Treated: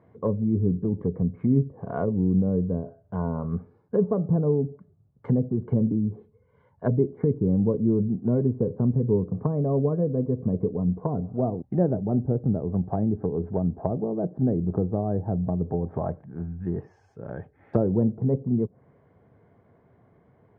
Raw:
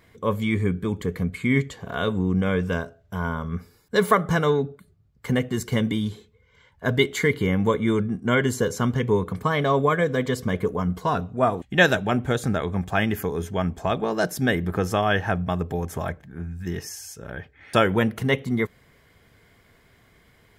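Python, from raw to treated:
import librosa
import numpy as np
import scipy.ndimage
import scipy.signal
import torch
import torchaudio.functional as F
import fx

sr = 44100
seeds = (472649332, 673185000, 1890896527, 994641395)

y = scipy.signal.sosfilt(scipy.signal.cheby1(2, 1.0, [110.0, 790.0], 'bandpass', fs=sr, output='sos'), x)
y = fx.env_lowpass_down(y, sr, base_hz=390.0, full_db=-22.5)
y = y * librosa.db_to_amplitude(2.0)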